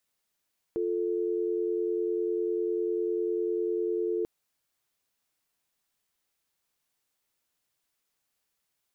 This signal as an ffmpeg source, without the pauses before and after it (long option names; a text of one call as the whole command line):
ffmpeg -f lavfi -i "aevalsrc='0.0355*(sin(2*PI*350*t)+sin(2*PI*440*t))':duration=3.49:sample_rate=44100" out.wav